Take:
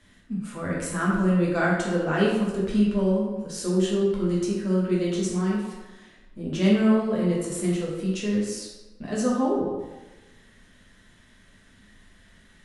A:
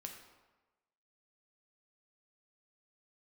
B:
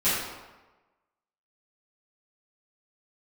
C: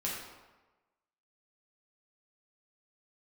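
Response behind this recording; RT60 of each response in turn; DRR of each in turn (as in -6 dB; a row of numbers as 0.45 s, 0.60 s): C; 1.2 s, 1.2 s, 1.2 s; 2.0 dB, -15.5 dB, -6.0 dB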